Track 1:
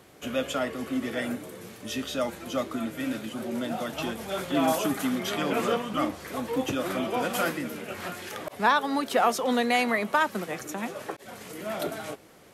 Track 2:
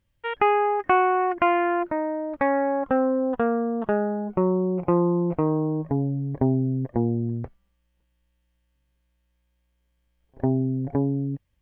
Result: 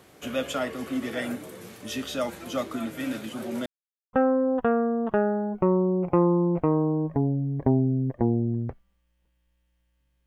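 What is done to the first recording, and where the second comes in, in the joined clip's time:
track 1
0:03.66–0:04.13: silence
0:04.13: continue with track 2 from 0:02.88

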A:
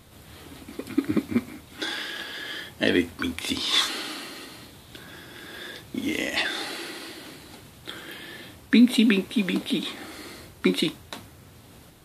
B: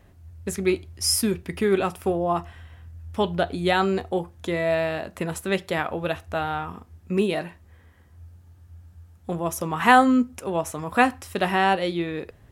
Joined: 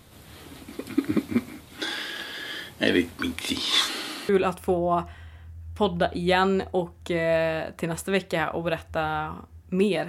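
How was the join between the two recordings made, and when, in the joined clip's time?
A
0:04.29: continue with B from 0:01.67

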